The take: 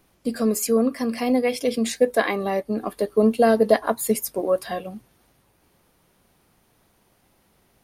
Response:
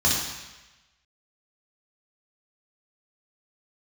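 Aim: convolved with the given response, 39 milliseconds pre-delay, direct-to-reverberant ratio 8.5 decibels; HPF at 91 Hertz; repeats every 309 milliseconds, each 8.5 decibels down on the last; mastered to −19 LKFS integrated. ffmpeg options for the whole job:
-filter_complex "[0:a]highpass=91,aecho=1:1:309|618|927|1236:0.376|0.143|0.0543|0.0206,asplit=2[link_01][link_02];[1:a]atrim=start_sample=2205,adelay=39[link_03];[link_02][link_03]afir=irnorm=-1:irlink=0,volume=-23.5dB[link_04];[link_01][link_04]amix=inputs=2:normalize=0,volume=2dB"

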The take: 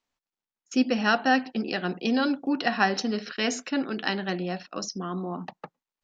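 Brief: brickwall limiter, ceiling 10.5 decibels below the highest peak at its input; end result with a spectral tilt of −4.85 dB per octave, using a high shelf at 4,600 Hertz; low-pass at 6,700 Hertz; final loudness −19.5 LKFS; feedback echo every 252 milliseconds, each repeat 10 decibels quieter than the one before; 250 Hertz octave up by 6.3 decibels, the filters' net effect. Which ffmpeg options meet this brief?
ffmpeg -i in.wav -af "lowpass=6700,equalizer=frequency=250:width_type=o:gain=7,highshelf=frequency=4600:gain=6,alimiter=limit=-16dB:level=0:latency=1,aecho=1:1:252|504|756|1008:0.316|0.101|0.0324|0.0104,volume=6.5dB" out.wav

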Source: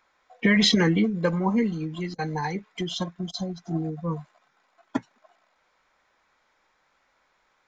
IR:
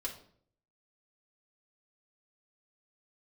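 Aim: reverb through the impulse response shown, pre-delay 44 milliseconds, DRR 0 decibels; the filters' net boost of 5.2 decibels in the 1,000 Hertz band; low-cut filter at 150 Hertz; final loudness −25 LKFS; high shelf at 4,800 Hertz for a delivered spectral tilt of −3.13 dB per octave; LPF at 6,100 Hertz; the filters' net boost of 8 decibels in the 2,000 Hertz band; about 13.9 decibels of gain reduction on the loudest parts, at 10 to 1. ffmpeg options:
-filter_complex "[0:a]highpass=150,lowpass=6100,equalizer=frequency=1000:width_type=o:gain=4.5,equalizer=frequency=2000:width_type=o:gain=6.5,highshelf=frequency=4800:gain=9,acompressor=threshold=-26dB:ratio=10,asplit=2[link_01][link_02];[1:a]atrim=start_sample=2205,adelay=44[link_03];[link_02][link_03]afir=irnorm=-1:irlink=0,volume=-0.5dB[link_04];[link_01][link_04]amix=inputs=2:normalize=0,volume=4dB"

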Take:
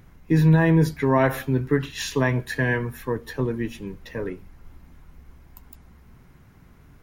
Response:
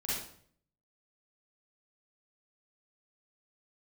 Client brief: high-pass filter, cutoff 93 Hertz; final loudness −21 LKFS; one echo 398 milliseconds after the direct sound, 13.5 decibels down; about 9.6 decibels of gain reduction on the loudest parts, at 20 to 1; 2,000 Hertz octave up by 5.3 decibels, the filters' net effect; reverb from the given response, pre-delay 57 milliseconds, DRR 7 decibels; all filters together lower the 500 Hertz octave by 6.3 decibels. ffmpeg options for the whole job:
-filter_complex "[0:a]highpass=93,equalizer=frequency=500:width_type=o:gain=-9,equalizer=frequency=2000:width_type=o:gain=7,acompressor=threshold=-23dB:ratio=20,aecho=1:1:398:0.211,asplit=2[link_01][link_02];[1:a]atrim=start_sample=2205,adelay=57[link_03];[link_02][link_03]afir=irnorm=-1:irlink=0,volume=-11dB[link_04];[link_01][link_04]amix=inputs=2:normalize=0,volume=7.5dB"

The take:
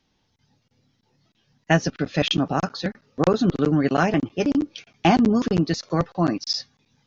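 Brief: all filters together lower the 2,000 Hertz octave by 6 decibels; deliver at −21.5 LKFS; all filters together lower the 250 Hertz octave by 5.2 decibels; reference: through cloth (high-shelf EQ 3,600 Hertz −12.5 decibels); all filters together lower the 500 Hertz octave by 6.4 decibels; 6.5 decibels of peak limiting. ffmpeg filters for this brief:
ffmpeg -i in.wav -af "equalizer=frequency=250:width_type=o:gain=-5,equalizer=frequency=500:width_type=o:gain=-6.5,equalizer=frequency=2000:width_type=o:gain=-4,alimiter=limit=-14.5dB:level=0:latency=1,highshelf=frequency=3600:gain=-12.5,volume=7dB" out.wav

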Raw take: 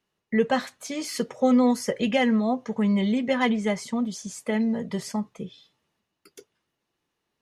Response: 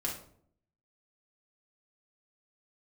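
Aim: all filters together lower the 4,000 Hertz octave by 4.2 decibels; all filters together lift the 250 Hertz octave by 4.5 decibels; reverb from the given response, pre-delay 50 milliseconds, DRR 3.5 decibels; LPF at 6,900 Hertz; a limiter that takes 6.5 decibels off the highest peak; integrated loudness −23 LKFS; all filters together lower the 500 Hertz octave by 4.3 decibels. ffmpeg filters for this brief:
-filter_complex "[0:a]lowpass=6900,equalizer=frequency=250:width_type=o:gain=6,equalizer=frequency=500:width_type=o:gain=-6,equalizer=frequency=4000:width_type=o:gain=-5.5,alimiter=limit=-14.5dB:level=0:latency=1,asplit=2[link_01][link_02];[1:a]atrim=start_sample=2205,adelay=50[link_03];[link_02][link_03]afir=irnorm=-1:irlink=0,volume=-7dB[link_04];[link_01][link_04]amix=inputs=2:normalize=0,volume=-1dB"

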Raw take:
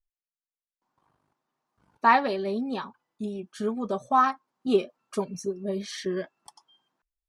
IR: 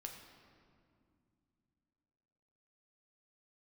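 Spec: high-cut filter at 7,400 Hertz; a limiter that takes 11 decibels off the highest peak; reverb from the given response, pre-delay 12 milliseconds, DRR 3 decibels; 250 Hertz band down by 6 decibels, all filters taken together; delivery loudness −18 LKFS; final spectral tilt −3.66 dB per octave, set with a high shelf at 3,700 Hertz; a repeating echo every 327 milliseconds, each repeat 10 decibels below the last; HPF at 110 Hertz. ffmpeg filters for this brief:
-filter_complex "[0:a]highpass=110,lowpass=7400,equalizer=frequency=250:width_type=o:gain=-7.5,highshelf=frequency=3700:gain=6.5,alimiter=limit=-18.5dB:level=0:latency=1,aecho=1:1:327|654|981|1308:0.316|0.101|0.0324|0.0104,asplit=2[link_01][link_02];[1:a]atrim=start_sample=2205,adelay=12[link_03];[link_02][link_03]afir=irnorm=-1:irlink=0,volume=1dB[link_04];[link_01][link_04]amix=inputs=2:normalize=0,volume=13dB"

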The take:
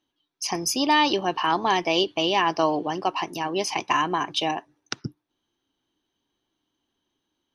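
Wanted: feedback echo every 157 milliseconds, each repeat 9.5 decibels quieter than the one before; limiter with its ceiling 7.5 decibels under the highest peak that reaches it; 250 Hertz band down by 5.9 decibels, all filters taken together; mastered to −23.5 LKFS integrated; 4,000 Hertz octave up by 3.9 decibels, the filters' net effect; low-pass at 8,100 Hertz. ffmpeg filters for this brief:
ffmpeg -i in.wav -af "lowpass=8100,equalizer=frequency=250:width_type=o:gain=-9,equalizer=frequency=4000:width_type=o:gain=6,alimiter=limit=-12.5dB:level=0:latency=1,aecho=1:1:157|314|471|628:0.335|0.111|0.0365|0.012,volume=0.5dB" out.wav

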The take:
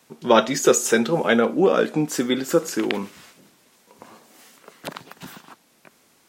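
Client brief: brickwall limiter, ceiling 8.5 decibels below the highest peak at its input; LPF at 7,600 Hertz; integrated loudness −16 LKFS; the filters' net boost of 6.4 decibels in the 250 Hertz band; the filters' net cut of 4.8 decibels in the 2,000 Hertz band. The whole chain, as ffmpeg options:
ffmpeg -i in.wav -af "lowpass=7600,equalizer=frequency=250:width_type=o:gain=8,equalizer=frequency=2000:width_type=o:gain=-7,volume=4.5dB,alimiter=limit=-5.5dB:level=0:latency=1" out.wav

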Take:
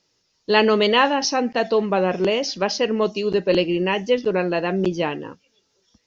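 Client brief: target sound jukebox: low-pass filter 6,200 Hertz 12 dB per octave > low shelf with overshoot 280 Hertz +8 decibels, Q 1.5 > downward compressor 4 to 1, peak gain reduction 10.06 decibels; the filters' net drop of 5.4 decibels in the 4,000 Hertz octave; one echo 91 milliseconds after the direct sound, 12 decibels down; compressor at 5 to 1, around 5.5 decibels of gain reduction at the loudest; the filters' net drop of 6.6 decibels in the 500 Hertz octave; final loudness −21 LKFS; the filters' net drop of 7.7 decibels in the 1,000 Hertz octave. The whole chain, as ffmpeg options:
ffmpeg -i in.wav -af "equalizer=frequency=500:width_type=o:gain=-4.5,equalizer=frequency=1000:width_type=o:gain=-7,equalizer=frequency=4000:width_type=o:gain=-7,acompressor=threshold=-23dB:ratio=5,lowpass=6200,lowshelf=frequency=280:width_type=q:width=1.5:gain=8,aecho=1:1:91:0.251,acompressor=threshold=-27dB:ratio=4,volume=9dB" out.wav

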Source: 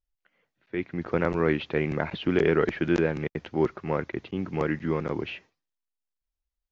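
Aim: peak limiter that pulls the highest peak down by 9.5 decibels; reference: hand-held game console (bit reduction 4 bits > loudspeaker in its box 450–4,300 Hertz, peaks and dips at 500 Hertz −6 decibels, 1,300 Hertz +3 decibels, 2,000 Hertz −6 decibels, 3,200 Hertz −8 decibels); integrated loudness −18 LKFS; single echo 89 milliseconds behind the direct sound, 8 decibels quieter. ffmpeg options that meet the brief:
ffmpeg -i in.wav -af "alimiter=limit=-18dB:level=0:latency=1,aecho=1:1:89:0.398,acrusher=bits=3:mix=0:aa=0.000001,highpass=450,equalizer=frequency=500:width_type=q:width=4:gain=-6,equalizer=frequency=1300:width_type=q:width=4:gain=3,equalizer=frequency=2000:width_type=q:width=4:gain=-6,equalizer=frequency=3200:width_type=q:width=4:gain=-8,lowpass=frequency=4300:width=0.5412,lowpass=frequency=4300:width=1.3066,volume=16.5dB" out.wav

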